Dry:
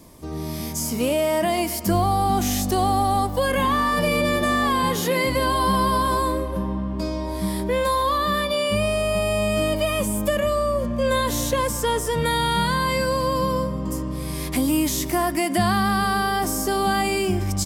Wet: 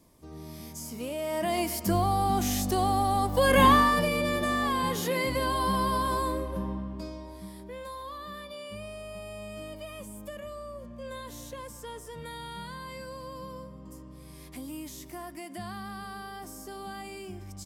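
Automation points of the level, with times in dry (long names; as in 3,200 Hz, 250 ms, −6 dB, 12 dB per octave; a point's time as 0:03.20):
0:01.12 −13.5 dB
0:01.56 −5.5 dB
0:03.19 −5.5 dB
0:03.67 +3.5 dB
0:04.11 −7 dB
0:06.69 −7 dB
0:07.53 −19 dB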